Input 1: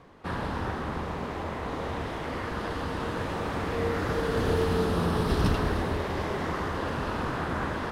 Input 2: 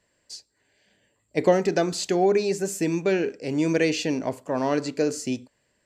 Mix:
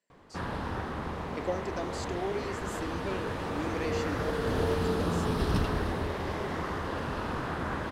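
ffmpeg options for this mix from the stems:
ffmpeg -i stem1.wav -i stem2.wav -filter_complex "[0:a]adelay=100,volume=-3dB[link_01];[1:a]highpass=frequency=180:width=0.5412,highpass=frequency=180:width=1.3066,volume=-14dB[link_02];[link_01][link_02]amix=inputs=2:normalize=0" out.wav

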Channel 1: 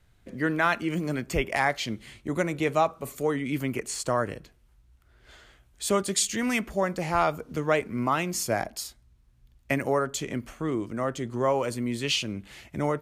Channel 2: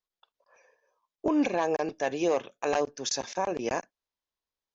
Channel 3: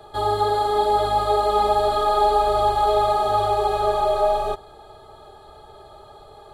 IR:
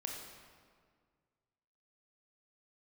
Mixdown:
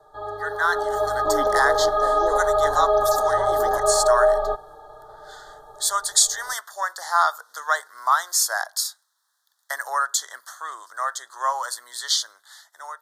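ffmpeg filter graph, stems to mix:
-filter_complex "[0:a]highpass=frequency=900:width=0.5412,highpass=frequency=900:width=1.3066,volume=1dB[link_01];[1:a]aeval=exprs='if(lt(val(0),0),0.708*val(0),val(0))':channel_layout=same,highshelf=frequency=5600:gain=-10.5,volume=-6dB[link_02];[2:a]lowpass=1700,lowshelf=frequency=140:gain=-6.5,aecho=1:1:6.6:0.76,volume=-6dB[link_03];[link_01][link_02][link_03]amix=inputs=3:normalize=0,equalizer=frequency=220:width=0.53:gain=-11,dynaudnorm=framelen=210:gausssize=7:maxgain=10dB,asuperstop=centerf=2500:order=8:qfactor=1.5"

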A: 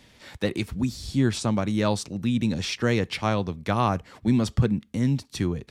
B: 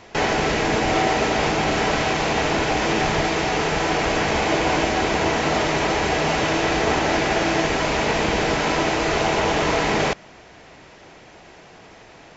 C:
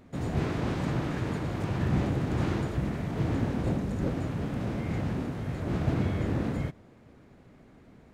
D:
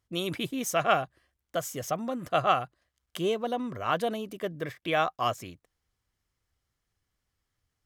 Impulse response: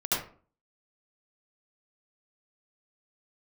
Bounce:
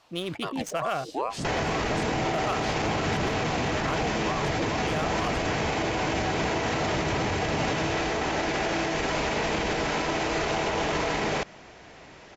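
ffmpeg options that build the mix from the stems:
-filter_complex "[0:a]equalizer=frequency=9700:width_type=o:width=0.3:gain=-7,aeval=exprs='val(0)*sin(2*PI*650*n/s+650*0.4/2.3*sin(2*PI*2.3*n/s))':channel_layout=same,volume=-3.5dB[link_01];[1:a]adelay=1300,volume=-2.5dB[link_02];[2:a]highshelf=frequency=8300:gain=-7,adelay=1250,volume=0.5dB[link_03];[3:a]adynamicsmooth=sensitivity=7.5:basefreq=2100,volume=-0.5dB[link_04];[link_01][link_02][link_03][link_04]amix=inputs=4:normalize=0,alimiter=limit=-18.5dB:level=0:latency=1:release=44"

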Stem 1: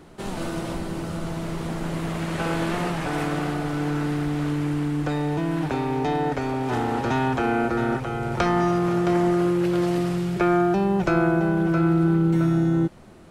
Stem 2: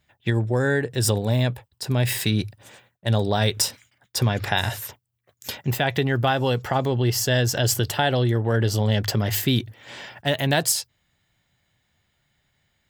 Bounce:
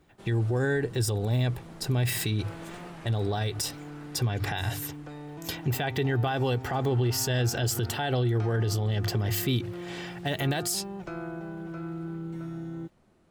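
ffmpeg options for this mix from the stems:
ffmpeg -i stem1.wav -i stem2.wav -filter_complex "[0:a]volume=-16.5dB[link_01];[1:a]lowshelf=frequency=230:gain=6,aecho=1:1:2.6:0.38,volume=-3dB[link_02];[link_01][link_02]amix=inputs=2:normalize=0,alimiter=limit=-19dB:level=0:latency=1:release=70" out.wav

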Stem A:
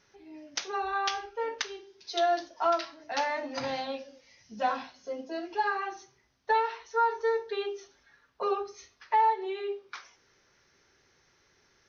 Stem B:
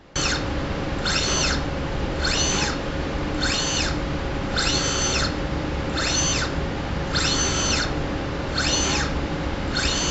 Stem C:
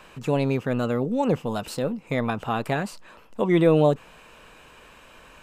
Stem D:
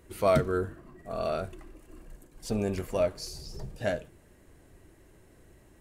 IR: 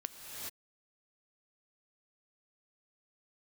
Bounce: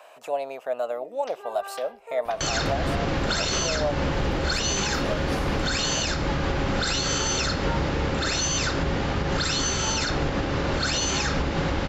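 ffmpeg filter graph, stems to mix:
-filter_complex "[0:a]lowpass=3400,adelay=700,volume=-8dB[link_01];[1:a]bandreject=frequency=60:width_type=h:width=6,bandreject=frequency=120:width_type=h:width=6,bandreject=frequency=180:width_type=h:width=6,bandreject=frequency=240:width_type=h:width=6,bandreject=frequency=300:width_type=h:width=6,adelay=2250,volume=3dB[link_02];[2:a]highshelf=frequency=9000:gain=6.5,acompressor=threshold=-31dB:ratio=1.5,highpass=frequency=650:width_type=q:width=7.7,volume=-5dB,asplit=2[link_03][link_04];[3:a]highshelf=frequency=11000:gain=10,adelay=2100,volume=-5dB[link_05];[link_04]apad=whole_len=348781[link_06];[link_05][link_06]sidechaincompress=threshold=-40dB:ratio=8:attack=16:release=318[link_07];[link_01][link_02][link_03][link_07]amix=inputs=4:normalize=0,alimiter=limit=-15.5dB:level=0:latency=1:release=108"

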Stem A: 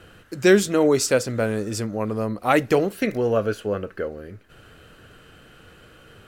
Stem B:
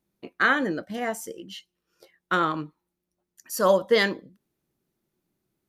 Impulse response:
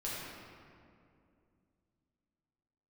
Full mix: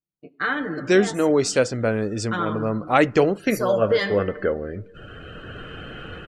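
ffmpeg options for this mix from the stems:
-filter_complex "[0:a]lowpass=7600,dynaudnorm=framelen=370:gausssize=5:maxgain=16dB,adelay=450,volume=-2.5dB[link_01];[1:a]equalizer=frequency=66:width_type=o:width=2.3:gain=7.5,aecho=1:1:6.7:0.67,volume=-6.5dB,asplit=3[link_02][link_03][link_04];[link_03]volume=-10dB[link_05];[link_04]apad=whole_len=296354[link_06];[link_01][link_06]sidechaincompress=threshold=-29dB:ratio=8:attack=16:release=101[link_07];[2:a]atrim=start_sample=2205[link_08];[link_05][link_08]afir=irnorm=-1:irlink=0[link_09];[link_07][link_02][link_09]amix=inputs=3:normalize=0,afftdn=noise_reduction=17:noise_floor=-44"

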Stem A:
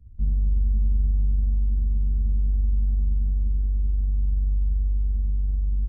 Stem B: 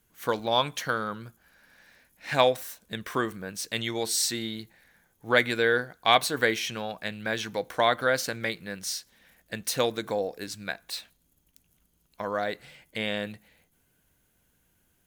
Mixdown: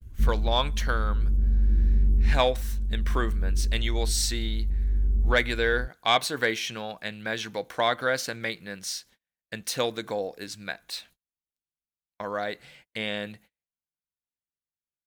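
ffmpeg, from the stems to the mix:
ffmpeg -i stem1.wav -i stem2.wav -filter_complex "[0:a]equalizer=frequency=370:width_type=o:width=1.1:gain=11.5,volume=2dB[link_01];[1:a]highshelf=frequency=2900:gain=7.5,volume=-1.5dB,asplit=2[link_02][link_03];[link_03]apad=whole_len=259326[link_04];[link_01][link_04]sidechaincompress=threshold=-27dB:ratio=8:attack=16:release=1300[link_05];[link_05][link_02]amix=inputs=2:normalize=0,lowpass=frequency=3800:poles=1,agate=range=-35dB:threshold=-53dB:ratio=16:detection=peak,asoftclip=type=tanh:threshold=-7.5dB" out.wav

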